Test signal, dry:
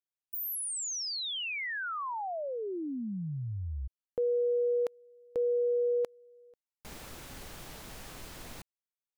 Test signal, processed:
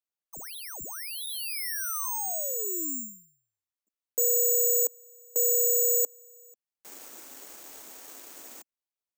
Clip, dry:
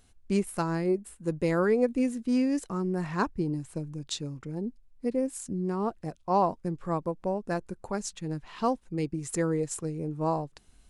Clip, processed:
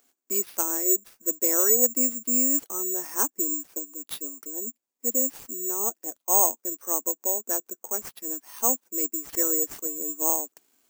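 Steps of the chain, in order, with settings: steep high-pass 250 Hz 48 dB/octave; treble shelf 4.1 kHz -10.5 dB; careless resampling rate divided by 6×, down none, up zero stuff; trim -3 dB

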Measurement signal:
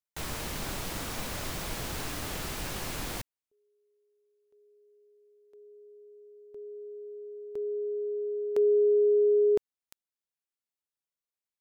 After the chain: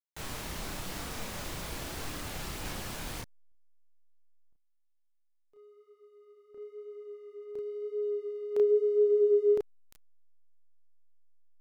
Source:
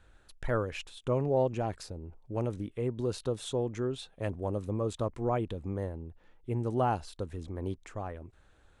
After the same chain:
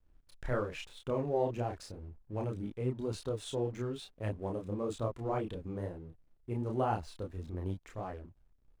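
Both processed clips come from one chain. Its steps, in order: hysteresis with a dead band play -51 dBFS; chorus voices 2, 0.93 Hz, delay 30 ms, depth 3.8 ms

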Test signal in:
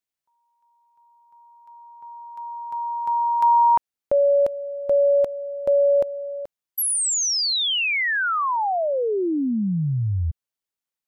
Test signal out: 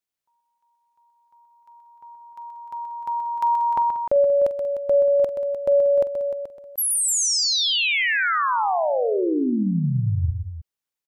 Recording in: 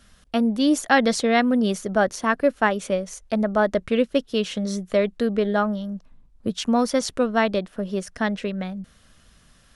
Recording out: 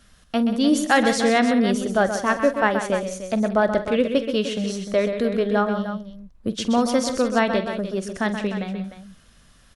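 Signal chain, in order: multi-tap echo 46/128/186/302 ms -15/-8.5/-15/-11 dB

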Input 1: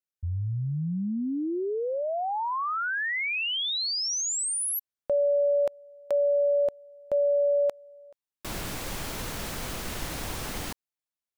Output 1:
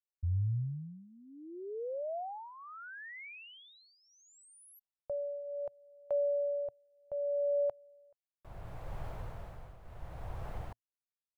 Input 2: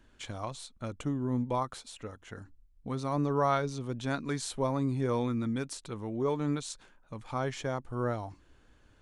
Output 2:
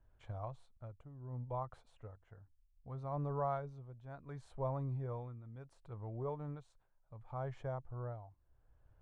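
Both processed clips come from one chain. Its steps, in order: FFT filter 120 Hz 0 dB, 250 Hz -17 dB, 680 Hz -3 dB, 5.5 kHz -28 dB; tremolo triangle 0.69 Hz, depth 80%; trim -1 dB

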